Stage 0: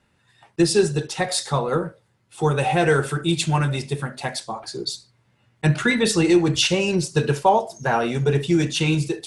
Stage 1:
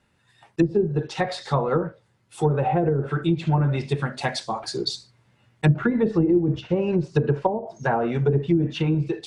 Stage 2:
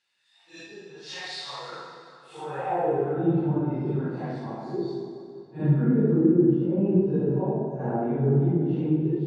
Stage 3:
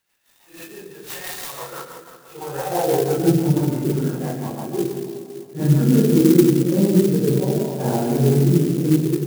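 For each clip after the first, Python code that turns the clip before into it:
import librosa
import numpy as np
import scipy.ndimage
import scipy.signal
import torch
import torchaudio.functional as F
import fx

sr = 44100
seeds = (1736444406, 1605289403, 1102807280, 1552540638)

y1 = fx.env_lowpass_down(x, sr, base_hz=350.0, full_db=-13.5)
y1 = fx.rider(y1, sr, range_db=3, speed_s=2.0)
y2 = fx.phase_scramble(y1, sr, seeds[0], window_ms=200)
y2 = fx.filter_sweep_bandpass(y2, sr, from_hz=4400.0, to_hz=260.0, start_s=2.07, end_s=3.28, q=1.2)
y2 = fx.rev_plate(y2, sr, seeds[1], rt60_s=2.5, hf_ratio=0.75, predelay_ms=0, drr_db=1.0)
y3 = fx.rotary_switch(y2, sr, hz=6.0, then_hz=0.75, switch_at_s=5.74)
y3 = y3 + 10.0 ** (-10.0 / 20.0) * np.pad(y3, (int(144 * sr / 1000.0), 0))[:len(y3)]
y3 = fx.clock_jitter(y3, sr, seeds[2], jitter_ms=0.065)
y3 = y3 * 10.0 ** (7.5 / 20.0)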